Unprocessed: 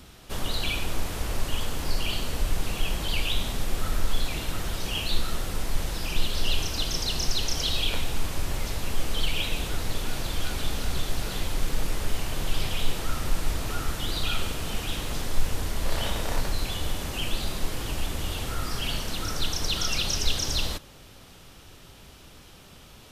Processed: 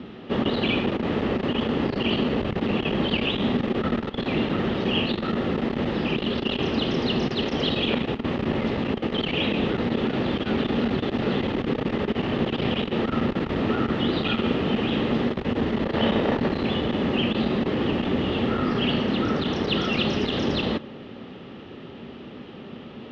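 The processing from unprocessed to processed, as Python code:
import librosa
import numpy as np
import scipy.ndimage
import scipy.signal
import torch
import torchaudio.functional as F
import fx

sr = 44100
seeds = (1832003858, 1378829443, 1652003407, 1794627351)

p1 = 10.0 ** (-22.0 / 20.0) * (np.abs((x / 10.0 ** (-22.0 / 20.0) + 3.0) % 4.0 - 2.0) - 1.0)
p2 = x + F.gain(torch.from_numpy(p1), -3.0).numpy()
p3 = fx.cabinet(p2, sr, low_hz=170.0, low_slope=12, high_hz=2600.0, hz=(230.0, 390.0, 690.0, 1000.0, 1500.0, 2300.0), db=(9, 4, -5, -7, -9, -8))
y = F.gain(torch.from_numpy(p3), 8.5).numpy()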